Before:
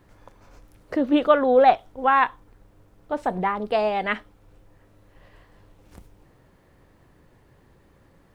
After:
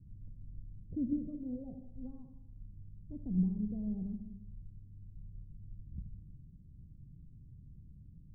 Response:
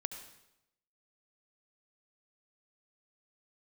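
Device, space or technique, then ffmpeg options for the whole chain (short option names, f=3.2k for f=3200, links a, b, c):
club heard from the street: -filter_complex "[0:a]alimiter=limit=-13.5dB:level=0:latency=1:release=499,lowpass=f=180:w=0.5412,lowpass=f=180:w=1.3066[a];[1:a]atrim=start_sample=2205[b];[a][b]afir=irnorm=-1:irlink=0,volume=6dB"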